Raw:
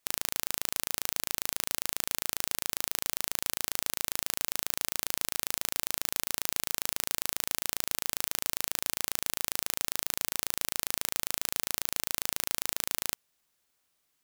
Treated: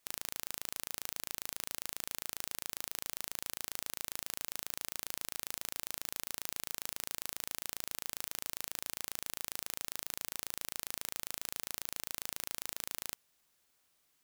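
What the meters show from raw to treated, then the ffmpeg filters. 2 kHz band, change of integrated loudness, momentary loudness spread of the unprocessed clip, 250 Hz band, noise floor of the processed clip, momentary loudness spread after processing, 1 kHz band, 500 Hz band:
-8.5 dB, -8.5 dB, 0 LU, -8.5 dB, -75 dBFS, 0 LU, -8.5 dB, -8.5 dB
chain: -af "asoftclip=type=hard:threshold=-12dB,volume=1.5dB"

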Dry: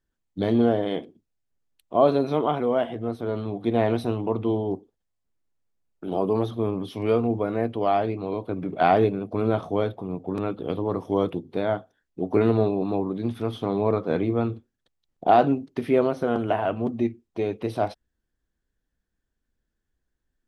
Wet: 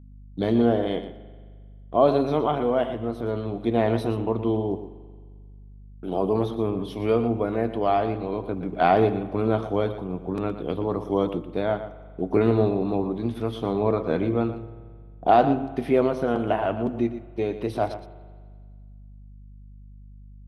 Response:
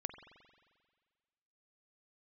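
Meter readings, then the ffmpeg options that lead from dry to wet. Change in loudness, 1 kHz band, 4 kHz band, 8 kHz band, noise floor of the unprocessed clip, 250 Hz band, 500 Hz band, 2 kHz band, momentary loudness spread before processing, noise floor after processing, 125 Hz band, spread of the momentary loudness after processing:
+0.5 dB, +0.5 dB, +0.5 dB, n/a, -80 dBFS, +0.5 dB, +0.5 dB, +0.5 dB, 10 LU, -45 dBFS, +0.5 dB, 10 LU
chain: -filter_complex "[0:a]agate=range=-33dB:threshold=-38dB:ratio=3:detection=peak,aeval=exprs='val(0)+0.00562*(sin(2*PI*50*n/s)+sin(2*PI*2*50*n/s)/2+sin(2*PI*3*50*n/s)/3+sin(2*PI*4*50*n/s)/4+sin(2*PI*5*50*n/s)/5)':c=same,asplit=2[a][b];[1:a]atrim=start_sample=2205,adelay=118[c];[b][c]afir=irnorm=-1:irlink=0,volume=-9.5dB[d];[a][d]amix=inputs=2:normalize=0"

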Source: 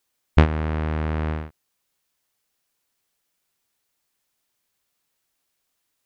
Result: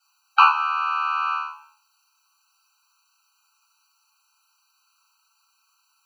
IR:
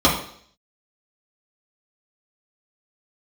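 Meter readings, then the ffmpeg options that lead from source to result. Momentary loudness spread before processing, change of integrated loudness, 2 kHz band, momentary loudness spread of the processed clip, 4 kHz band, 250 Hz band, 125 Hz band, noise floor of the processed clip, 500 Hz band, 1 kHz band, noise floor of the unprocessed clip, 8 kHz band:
12 LU, +3.0 dB, +8.0 dB, 11 LU, +8.0 dB, under -40 dB, under -40 dB, -68 dBFS, under -35 dB, +14.0 dB, -76 dBFS, n/a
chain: -filter_complex "[1:a]atrim=start_sample=2205,asetrate=48510,aresample=44100[a];[0:a][a]afir=irnorm=-1:irlink=0,acrossover=split=4300[b][c];[c]acompressor=threshold=-55dB:ratio=4:attack=1:release=60[d];[b][d]amix=inputs=2:normalize=0,tiltshelf=f=1.4k:g=-3.5,afftfilt=real='re*eq(mod(floor(b*sr/1024/780),2),1)':imag='im*eq(mod(floor(b*sr/1024/780),2),1)':win_size=1024:overlap=0.75,volume=-6dB"

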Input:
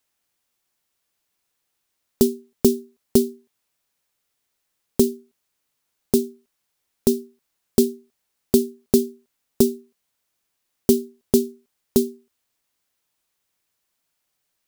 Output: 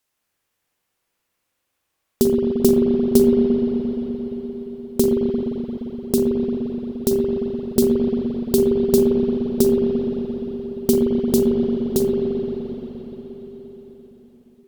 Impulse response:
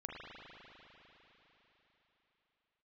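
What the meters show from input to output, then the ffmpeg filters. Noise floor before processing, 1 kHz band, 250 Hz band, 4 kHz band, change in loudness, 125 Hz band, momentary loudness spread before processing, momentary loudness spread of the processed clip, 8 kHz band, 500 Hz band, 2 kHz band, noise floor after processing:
-76 dBFS, +5.0 dB, +5.0 dB, 0.0 dB, +2.5 dB, +5.0 dB, 9 LU, 14 LU, -1.0 dB, +5.5 dB, n/a, -76 dBFS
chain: -filter_complex "[1:a]atrim=start_sample=2205,asetrate=37926,aresample=44100[a];[0:a][a]afir=irnorm=-1:irlink=0,volume=4dB"

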